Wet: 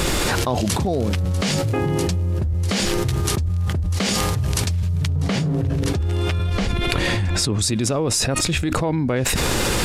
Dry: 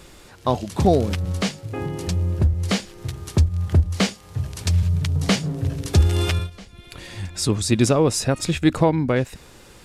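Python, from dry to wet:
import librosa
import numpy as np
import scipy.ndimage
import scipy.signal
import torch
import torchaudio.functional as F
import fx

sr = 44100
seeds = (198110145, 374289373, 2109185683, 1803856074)

y = fx.high_shelf(x, sr, hz=3800.0, db=-10.0, at=(5.08, 7.59))
y = fx.env_flatten(y, sr, amount_pct=100)
y = F.gain(torch.from_numpy(y), -10.0).numpy()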